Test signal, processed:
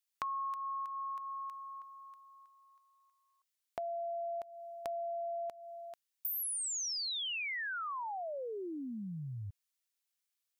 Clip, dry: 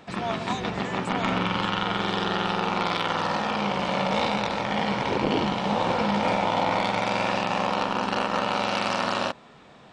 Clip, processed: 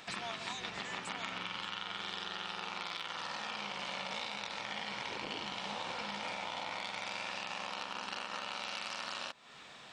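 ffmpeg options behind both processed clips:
ffmpeg -i in.wav -af "tiltshelf=frequency=1100:gain=-9,acompressor=threshold=-36dB:ratio=5,volume=-2.5dB" out.wav

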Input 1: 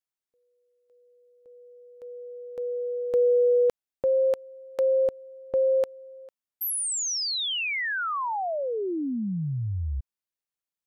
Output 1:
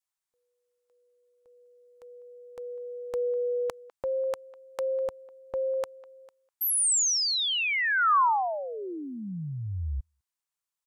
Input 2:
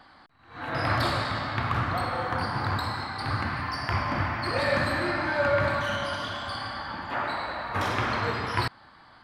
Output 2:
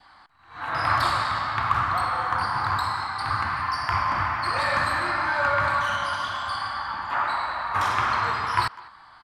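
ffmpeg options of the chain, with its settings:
ffmpeg -i in.wav -filter_complex "[0:a]equalizer=frequency=125:width_type=o:width=1:gain=-4,equalizer=frequency=250:width_type=o:width=1:gain=-7,equalizer=frequency=500:width_type=o:width=1:gain=-7,equalizer=frequency=1000:width_type=o:width=1:gain=6,equalizer=frequency=8000:width_type=o:width=1:gain=5,asplit=2[link_01][link_02];[link_02]adelay=200,highpass=300,lowpass=3400,asoftclip=type=hard:threshold=-17dB,volume=-20dB[link_03];[link_01][link_03]amix=inputs=2:normalize=0,adynamicequalizer=threshold=0.01:dfrequency=1200:dqfactor=1.9:tfrequency=1200:tqfactor=1.9:attack=5:release=100:ratio=0.375:range=2:mode=boostabove:tftype=bell" out.wav

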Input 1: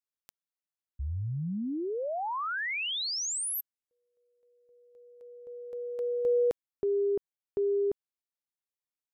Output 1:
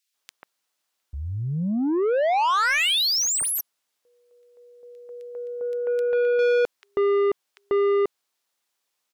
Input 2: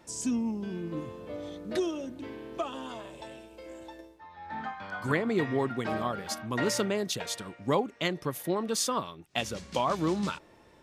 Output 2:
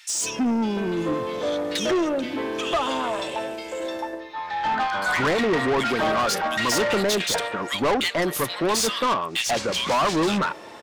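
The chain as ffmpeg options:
ffmpeg -i in.wav -filter_complex "[0:a]acrossover=split=2000[link_01][link_02];[link_01]adelay=140[link_03];[link_03][link_02]amix=inputs=2:normalize=0,asplit=2[link_04][link_05];[link_05]highpass=frequency=720:poles=1,volume=27dB,asoftclip=type=tanh:threshold=-14dB[link_06];[link_04][link_06]amix=inputs=2:normalize=0,lowpass=frequency=5900:poles=1,volume=-6dB" out.wav

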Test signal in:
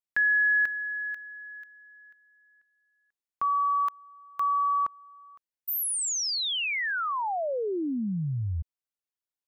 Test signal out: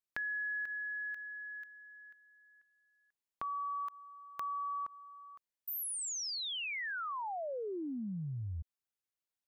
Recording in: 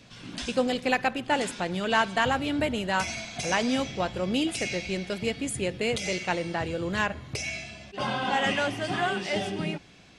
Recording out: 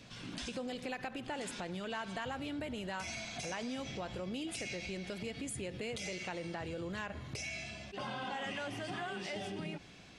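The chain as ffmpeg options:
ffmpeg -i in.wav -af "acompressor=threshold=-37dB:ratio=4:attack=3.6:release=113:knee=6:detection=peak,volume=-2dB" out.wav

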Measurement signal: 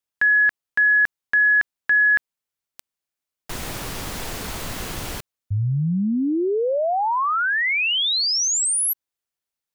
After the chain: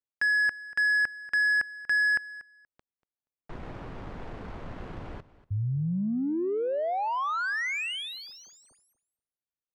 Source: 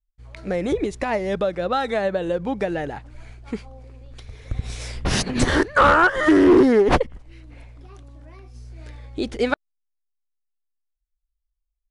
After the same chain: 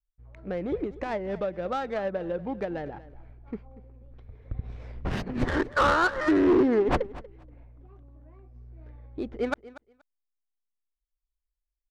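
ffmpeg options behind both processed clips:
ffmpeg -i in.wav -af "highshelf=frequency=7200:gain=-4.5,adynamicsmooth=sensitivity=1:basefreq=1200,aecho=1:1:238|476:0.126|0.0201,volume=-7dB" out.wav

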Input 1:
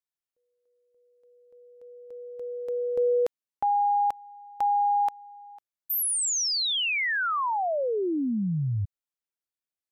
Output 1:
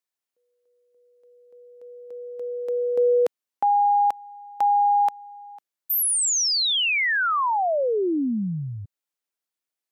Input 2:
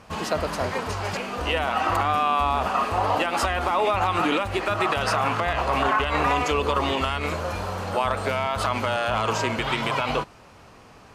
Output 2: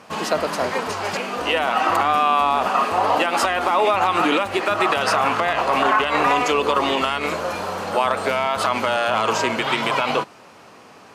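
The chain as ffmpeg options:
ffmpeg -i in.wav -af "highpass=200,volume=4.5dB" out.wav

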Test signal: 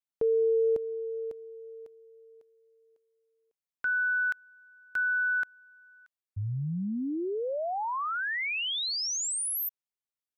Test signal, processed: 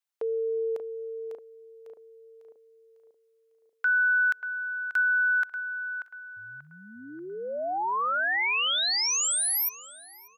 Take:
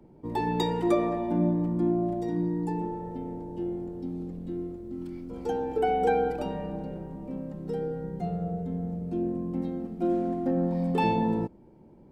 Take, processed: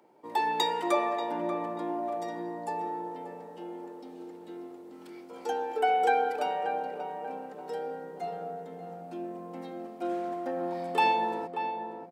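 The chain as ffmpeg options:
ffmpeg -i in.wav -filter_complex "[0:a]highpass=730,asplit=2[link_01][link_02];[link_02]adelay=586,lowpass=frequency=1500:poles=1,volume=-7dB,asplit=2[link_03][link_04];[link_04]adelay=586,lowpass=frequency=1500:poles=1,volume=0.48,asplit=2[link_05][link_06];[link_06]adelay=586,lowpass=frequency=1500:poles=1,volume=0.48,asplit=2[link_07][link_08];[link_08]adelay=586,lowpass=frequency=1500:poles=1,volume=0.48,asplit=2[link_09][link_10];[link_10]adelay=586,lowpass=frequency=1500:poles=1,volume=0.48,asplit=2[link_11][link_12];[link_12]adelay=586,lowpass=frequency=1500:poles=1,volume=0.48[link_13];[link_03][link_05][link_07][link_09][link_11][link_13]amix=inputs=6:normalize=0[link_14];[link_01][link_14]amix=inputs=2:normalize=0,volume=5dB" out.wav

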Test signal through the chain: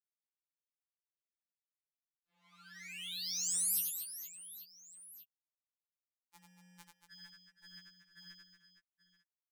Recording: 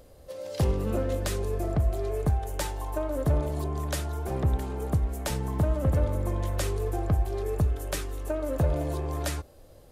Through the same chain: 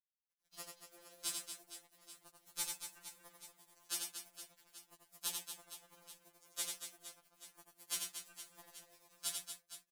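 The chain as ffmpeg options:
ffmpeg -i in.wav -filter_complex "[0:a]highpass=210,aderivative,agate=range=-33dB:threshold=-53dB:ratio=3:detection=peak,asplit=2[link_01][link_02];[link_02]acrusher=bits=4:mix=0:aa=0.5,volume=-5dB[link_03];[link_01][link_03]amix=inputs=2:normalize=0,highshelf=frequency=9500:gain=-11.5,aeval=exprs='val(0)+0.00112*(sin(2*PI*60*n/s)+sin(2*PI*2*60*n/s)/2+sin(2*PI*3*60*n/s)/3+sin(2*PI*4*60*n/s)/4+sin(2*PI*5*60*n/s)/5)':channel_layout=same,aeval=exprs='sgn(val(0))*max(abs(val(0))-0.00447,0)':channel_layout=same,aecho=1:1:90|234|464.4|833|1423:0.631|0.398|0.251|0.158|0.1,afftfilt=real='re*2.83*eq(mod(b,8),0)':imag='im*2.83*eq(mod(b,8),0)':win_size=2048:overlap=0.75,volume=2.5dB" out.wav

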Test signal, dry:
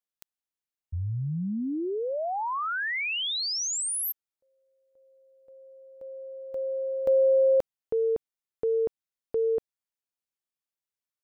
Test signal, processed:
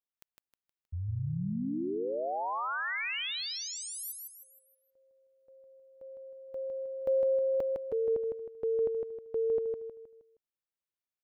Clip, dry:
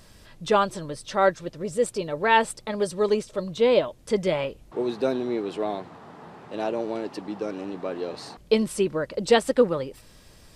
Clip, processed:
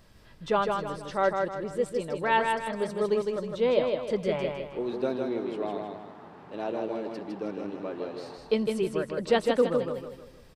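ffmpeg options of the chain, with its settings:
ffmpeg -i in.wav -af "equalizer=frequency=8500:width=0.61:gain=-8,aecho=1:1:157|314|471|628|785:0.631|0.252|0.101|0.0404|0.0162,volume=-5dB" out.wav

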